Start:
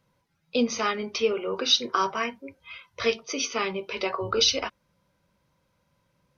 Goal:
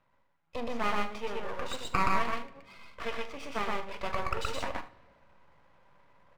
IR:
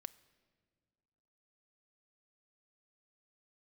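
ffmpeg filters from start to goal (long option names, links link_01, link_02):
-filter_complex "[0:a]lowpass=1500,lowshelf=frequency=530:width_type=q:width=1.5:gain=-9.5,areverse,acompressor=mode=upward:threshold=-50dB:ratio=2.5,areverse,aeval=exprs='max(val(0),0)':channel_layout=same,aecho=1:1:43|76:0.178|0.158,asplit=2[link_01][link_02];[1:a]atrim=start_sample=2205,adelay=122[link_03];[link_02][link_03]afir=irnorm=-1:irlink=0,volume=4dB[link_04];[link_01][link_04]amix=inputs=2:normalize=0"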